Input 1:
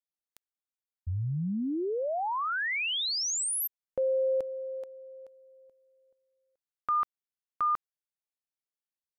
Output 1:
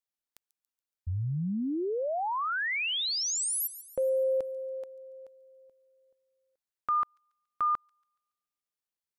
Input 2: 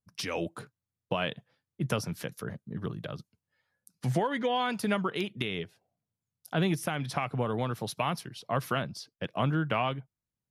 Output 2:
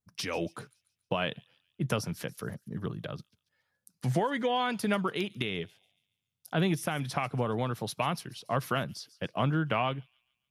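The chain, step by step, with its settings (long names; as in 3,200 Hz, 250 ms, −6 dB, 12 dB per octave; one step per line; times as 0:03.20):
delay with a high-pass on its return 141 ms, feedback 46%, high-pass 5,300 Hz, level −14.5 dB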